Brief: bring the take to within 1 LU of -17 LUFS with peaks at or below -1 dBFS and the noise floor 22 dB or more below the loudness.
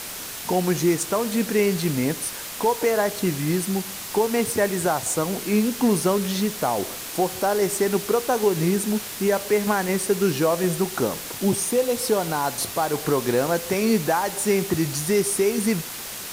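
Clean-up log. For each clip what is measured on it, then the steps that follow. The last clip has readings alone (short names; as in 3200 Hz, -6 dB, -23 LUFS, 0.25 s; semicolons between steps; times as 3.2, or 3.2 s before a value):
noise floor -34 dBFS; noise floor target -45 dBFS; loudness -23.0 LUFS; peak -9.0 dBFS; loudness target -17.0 LUFS
-> noise print and reduce 11 dB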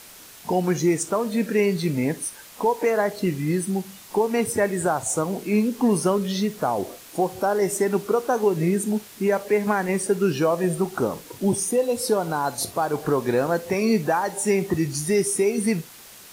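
noise floor -45 dBFS; noise floor target -46 dBFS
-> noise print and reduce 6 dB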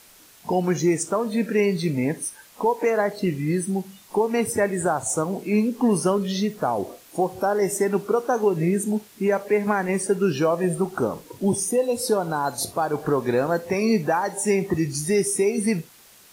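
noise floor -51 dBFS; loudness -23.5 LUFS; peak -10.0 dBFS; loudness target -17.0 LUFS
-> gain +6.5 dB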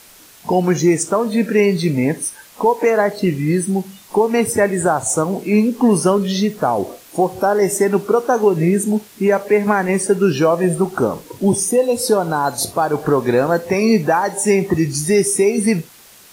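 loudness -17.0 LUFS; peak -3.5 dBFS; noise floor -45 dBFS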